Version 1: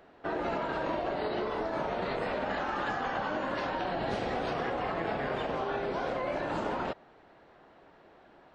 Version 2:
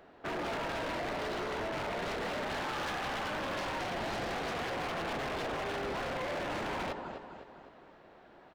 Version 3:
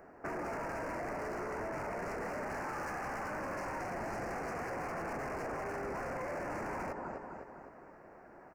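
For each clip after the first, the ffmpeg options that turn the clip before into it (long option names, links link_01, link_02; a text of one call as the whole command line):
ffmpeg -i in.wav -af "aecho=1:1:254|508|762|1016|1270:0.316|0.145|0.0669|0.0308|0.0142,aeval=exprs='0.0282*(abs(mod(val(0)/0.0282+3,4)-2)-1)':channel_layout=same" out.wav
ffmpeg -i in.wav -af "acompressor=threshold=-39dB:ratio=4,asuperstop=centerf=3500:order=4:qfactor=1,volume=2dB" out.wav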